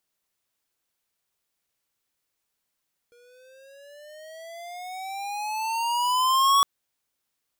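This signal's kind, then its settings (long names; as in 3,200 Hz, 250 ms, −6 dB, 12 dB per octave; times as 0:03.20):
pitch glide with a swell square, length 3.51 s, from 475 Hz, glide +15 semitones, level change +38 dB, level −17.5 dB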